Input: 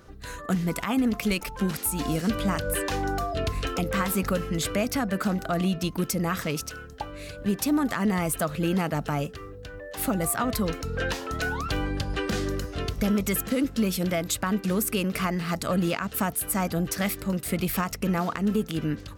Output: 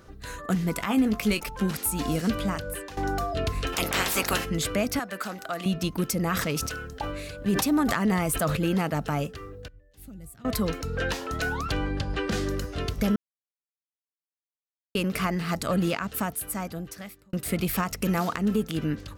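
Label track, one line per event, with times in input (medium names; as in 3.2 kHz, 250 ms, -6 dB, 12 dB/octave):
0.780000	1.410000	doubling 19 ms -9.5 dB
2.300000	2.970000	fade out, to -16 dB
3.720000	4.440000	spectral peaks clipped ceiling under each frame's peak by 25 dB
4.990000	5.660000	high-pass 890 Hz 6 dB/octave
6.230000	8.570000	decay stretcher at most 33 dB/s
9.680000	10.450000	amplifier tone stack bass-middle-treble 10-0-1
11.720000	12.320000	distance through air 57 m
13.160000	14.950000	mute
15.880000	17.330000	fade out
17.970000	18.370000	treble shelf 4.1 kHz +7.5 dB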